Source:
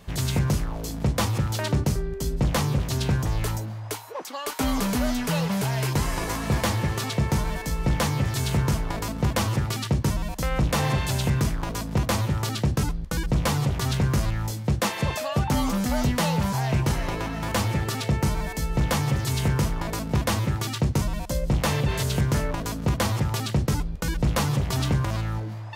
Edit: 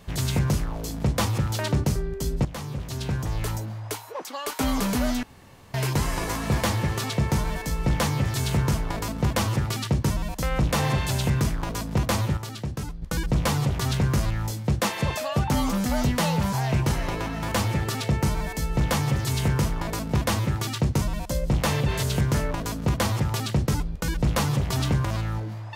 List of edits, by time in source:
2.45–3.72 s: fade in, from -13.5 dB
5.23–5.74 s: room tone
12.37–13.02 s: gain -7.5 dB

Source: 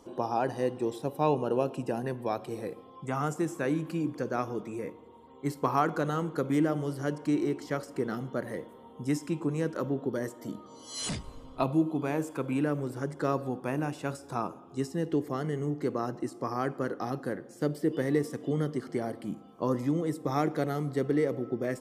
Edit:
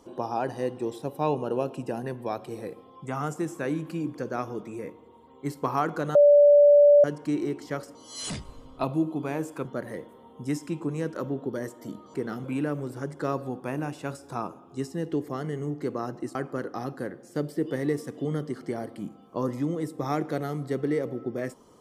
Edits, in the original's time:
6.15–7.04 s: bleep 581 Hz -12 dBFS
7.95–8.25 s: swap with 10.74–12.44 s
16.35–16.61 s: delete

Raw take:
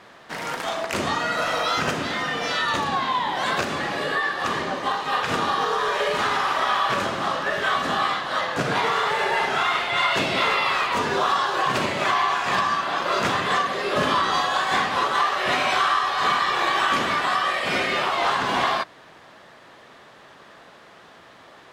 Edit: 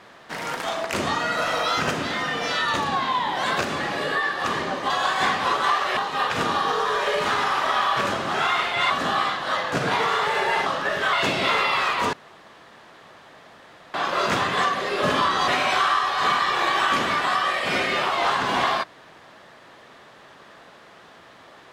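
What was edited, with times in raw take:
7.27–7.74 s: swap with 9.50–10.06 s
11.06–12.87 s: room tone
14.41–15.48 s: move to 4.90 s

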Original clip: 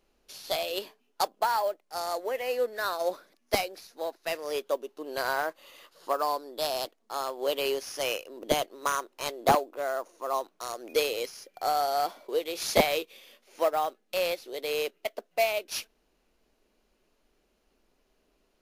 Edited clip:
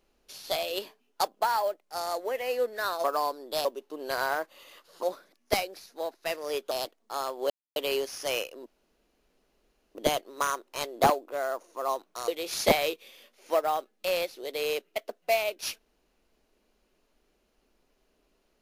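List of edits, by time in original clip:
3.04–4.72 s: swap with 6.10–6.71 s
7.50 s: insert silence 0.26 s
8.40 s: insert room tone 1.29 s
10.73–12.37 s: delete

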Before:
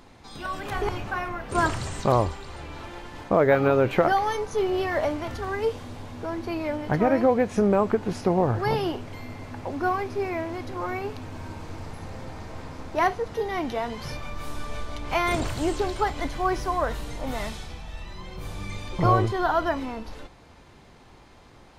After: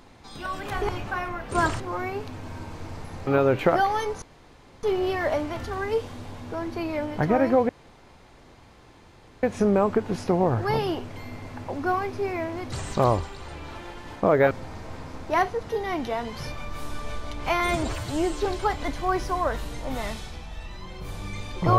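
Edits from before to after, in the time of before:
1.80–3.59 s: swap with 10.69–12.16 s
4.54 s: insert room tone 0.61 s
7.40 s: insert room tone 1.74 s
15.25–15.82 s: stretch 1.5×

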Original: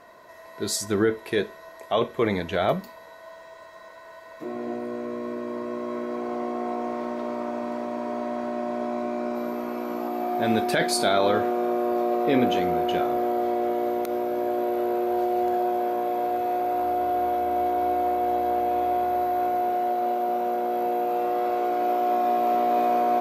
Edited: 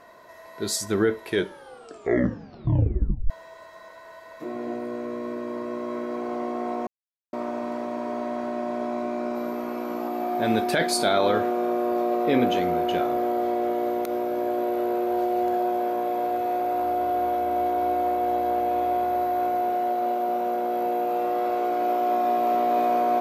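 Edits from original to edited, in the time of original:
1.28 s: tape stop 2.02 s
6.87–7.33 s: mute

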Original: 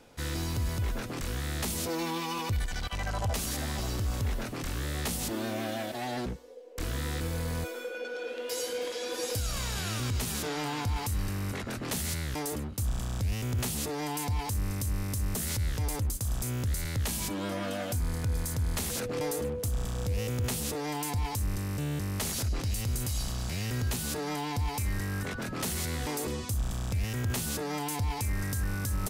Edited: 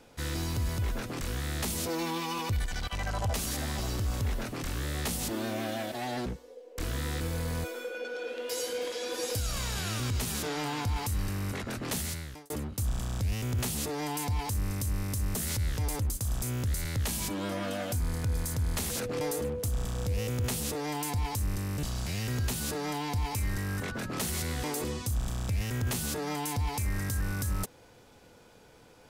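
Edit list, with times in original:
11.97–12.50 s: fade out
21.83–23.26 s: delete

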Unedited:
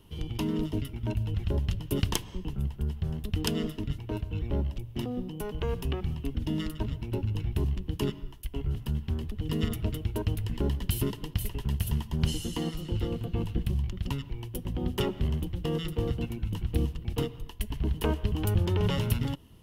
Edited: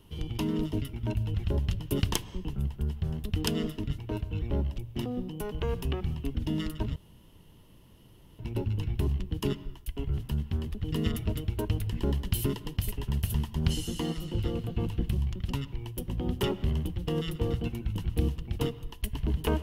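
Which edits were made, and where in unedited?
6.96 s: insert room tone 1.43 s

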